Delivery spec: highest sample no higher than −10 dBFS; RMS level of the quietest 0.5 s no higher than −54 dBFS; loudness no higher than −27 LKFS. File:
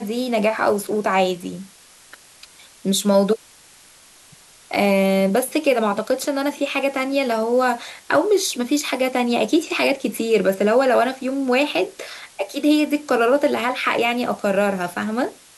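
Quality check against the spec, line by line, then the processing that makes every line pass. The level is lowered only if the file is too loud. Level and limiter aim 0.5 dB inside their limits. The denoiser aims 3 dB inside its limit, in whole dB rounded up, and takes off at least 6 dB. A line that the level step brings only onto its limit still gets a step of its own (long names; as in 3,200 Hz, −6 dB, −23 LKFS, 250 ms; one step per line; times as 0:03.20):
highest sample −5.5 dBFS: out of spec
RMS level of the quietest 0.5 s −49 dBFS: out of spec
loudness −20.0 LKFS: out of spec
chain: level −7.5 dB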